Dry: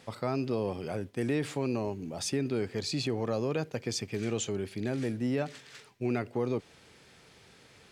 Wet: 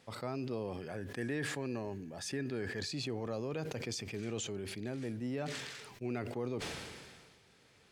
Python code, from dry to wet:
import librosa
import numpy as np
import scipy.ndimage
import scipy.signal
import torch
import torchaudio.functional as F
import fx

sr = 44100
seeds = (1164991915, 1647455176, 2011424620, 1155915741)

y = fx.small_body(x, sr, hz=(1700.0,), ring_ms=35, db=17, at=(0.77, 2.93))
y = fx.sustainer(y, sr, db_per_s=33.0)
y = y * 10.0 ** (-8.0 / 20.0)